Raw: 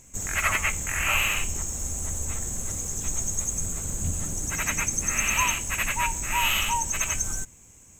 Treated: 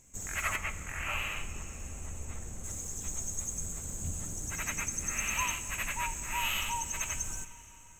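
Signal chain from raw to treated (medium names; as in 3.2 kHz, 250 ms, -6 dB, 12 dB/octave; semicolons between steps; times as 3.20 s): 0.56–2.64 s: treble shelf 4 kHz -10 dB; plate-style reverb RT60 4 s, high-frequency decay 0.85×, DRR 12.5 dB; trim -8.5 dB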